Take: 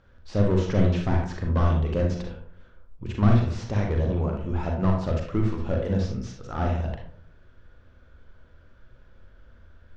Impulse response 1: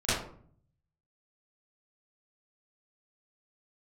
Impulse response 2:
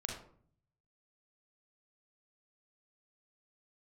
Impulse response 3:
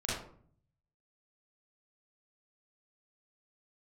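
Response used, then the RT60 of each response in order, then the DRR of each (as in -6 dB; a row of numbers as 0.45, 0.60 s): 2; 0.55, 0.55, 0.55 s; -16.0, 0.5, -7.5 dB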